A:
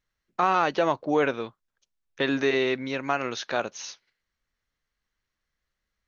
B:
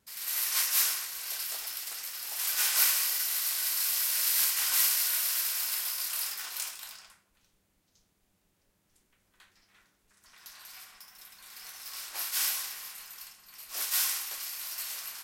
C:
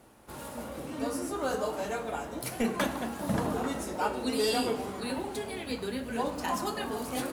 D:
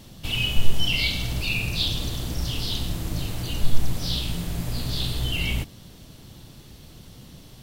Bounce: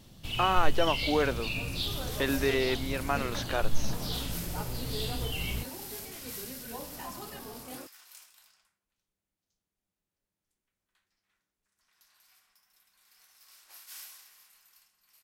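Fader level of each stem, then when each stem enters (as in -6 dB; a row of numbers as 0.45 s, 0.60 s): -4.0 dB, -16.5 dB, -11.0 dB, -8.5 dB; 0.00 s, 1.55 s, 0.55 s, 0.00 s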